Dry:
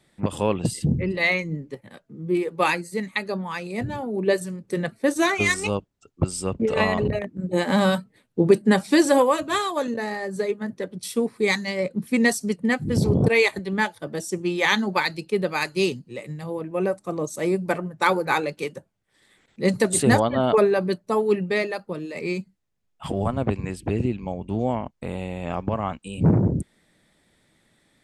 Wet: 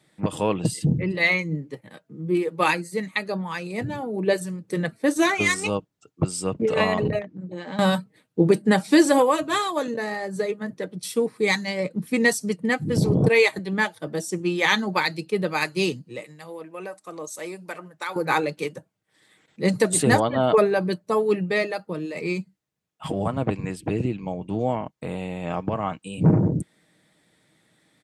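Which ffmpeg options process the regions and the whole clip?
ffmpeg -i in.wav -filter_complex "[0:a]asettb=1/sr,asplit=3[link_01][link_02][link_03];[link_01]atrim=end=7.214[link_04];[link_02]atrim=start=7.21:end=7.79,asetpts=PTS-STARTPTS,afade=type=in:duration=0.004:curve=qsin,afade=type=out:start_time=0.576:duration=0.004:curve=qsin,lowpass=frequency=6200:width=0.5412,lowpass=frequency=6200:width=1.3066,acompressor=threshold=-34dB:ratio=3:attack=3.2:release=140:knee=1:detection=peak[link_05];[link_03]atrim=start=7.786[link_06];[link_04][link_05]acrossfade=duration=0.004:curve1=hsin:curve2=qsin[link_07];[link_07][link_06]acrossfade=duration=0.004:curve1=qsin:curve2=hsin,asettb=1/sr,asplit=3[link_08][link_09][link_10];[link_08]atrim=end=16.244[link_11];[link_09]atrim=start=16.24:end=18.16,asetpts=PTS-STARTPTS,afade=type=in:duration=0.004:curve=qsin,afade=type=out:start_time=1.916:duration=0.004:curve=qsin,highpass=frequency=1000:poles=1,acompressor=threshold=-32dB:ratio=2:attack=3.2:release=140:knee=1:detection=peak[link_12];[link_10]atrim=start=18.156[link_13];[link_11][link_12]acrossfade=duration=0.004:curve1=hsin:curve2=qsin[link_14];[link_14][link_13]acrossfade=duration=0.004:curve1=qsin:curve2=hsin,highpass=94,aecho=1:1:6.4:0.32" out.wav

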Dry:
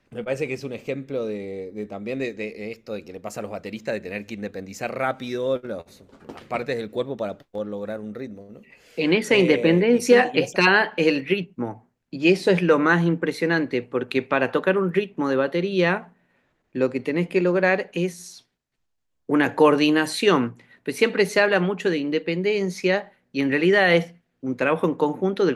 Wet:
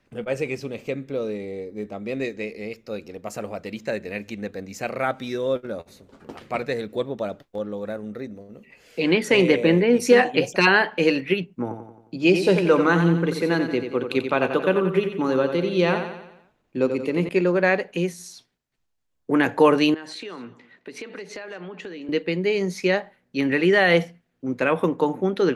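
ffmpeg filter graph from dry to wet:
ffmpeg -i in.wav -filter_complex "[0:a]asettb=1/sr,asplit=3[link_01][link_02][link_03];[link_01]atrim=end=11.624[link_04];[link_02]atrim=start=11.62:end=17.29,asetpts=PTS-STARTPTS,afade=type=in:duration=0.004:curve=qsin,afade=type=out:start_time=5.666:duration=0.004:curve=qsin,equalizer=frequency=1800:width_type=o:width=0.35:gain=-8,aecho=1:1:89|178|267|356|445|534:0.398|0.199|0.0995|0.0498|0.0249|0.0124,atrim=end_sample=250047[link_05];[link_03]atrim=start=17.286[link_06];[link_04][link_05]acrossfade=duration=0.004:curve1=hsin:curve2=qsin[link_07];[link_07][link_06]acrossfade=duration=0.004:curve1=qsin:curve2=hsin,asettb=1/sr,asplit=3[link_08][link_09][link_10];[link_08]atrim=end=19.944[link_11];[link_09]atrim=start=19.94:end=22.09,asetpts=PTS-STARTPTS,afade=type=in:duration=0.004:curve=qsin,afade=type=out:start_time=2.146:duration=0.004:curve=qsin,acrossover=split=180 6900:gain=0.251 1 0.0891[link_12][link_13][link_14];[link_12][link_13][link_14]amix=inputs=3:normalize=0,acompressor=threshold=-33dB:ratio=8:attack=3.2:release=140:knee=1:detection=peak,aecho=1:1:215:0.1,atrim=end_sample=94815[link_15];[link_10]atrim=start=22.086[link_16];[link_11][link_15]acrossfade=duration=0.004:curve1=hsin:curve2=qsin[link_17];[link_17][link_16]acrossfade=duration=0.004:curve1=qsin:curve2=hsin" out.wav

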